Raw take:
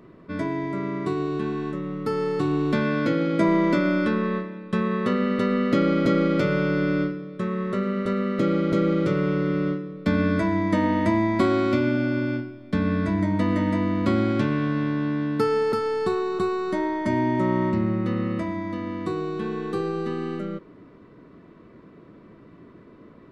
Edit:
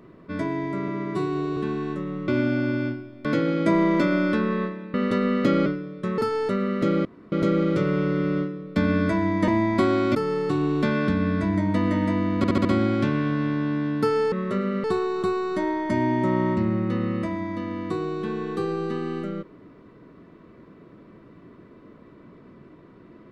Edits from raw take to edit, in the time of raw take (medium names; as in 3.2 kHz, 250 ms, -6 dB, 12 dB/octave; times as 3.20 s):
0.88–1.34 s: stretch 1.5×
2.05–2.98 s: swap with 11.76–12.73 s
4.67–5.22 s: delete
5.94–7.02 s: delete
7.54–8.06 s: swap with 15.69–16.00 s
8.62 s: insert room tone 0.27 s
10.78–11.09 s: delete
14.02 s: stutter 0.07 s, 5 plays